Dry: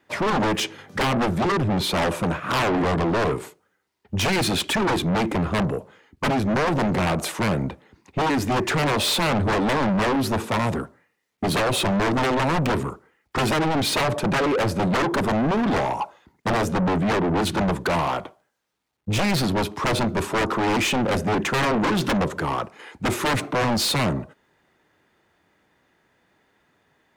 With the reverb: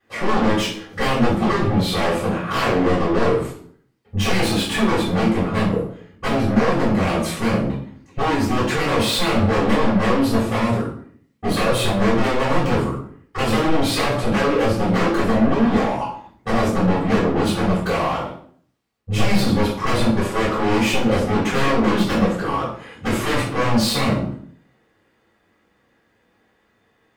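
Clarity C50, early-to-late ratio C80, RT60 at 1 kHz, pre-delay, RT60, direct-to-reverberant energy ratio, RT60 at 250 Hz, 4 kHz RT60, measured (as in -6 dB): 4.5 dB, 8.5 dB, 0.50 s, 3 ms, 0.55 s, -10.5 dB, 0.75 s, 0.45 s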